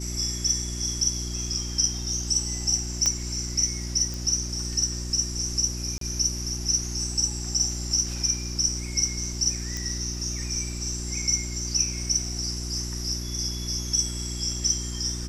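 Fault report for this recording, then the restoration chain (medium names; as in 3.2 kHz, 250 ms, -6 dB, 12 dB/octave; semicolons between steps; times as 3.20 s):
hum 60 Hz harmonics 6 -33 dBFS
3.06 s: pop -9 dBFS
4.14 s: pop
5.98–6.01 s: dropout 33 ms
9.77 s: pop -17 dBFS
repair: de-click; de-hum 60 Hz, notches 6; interpolate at 5.98 s, 33 ms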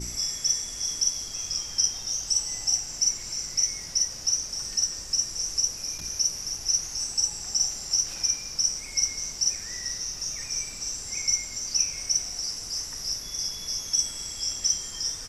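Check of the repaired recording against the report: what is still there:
nothing left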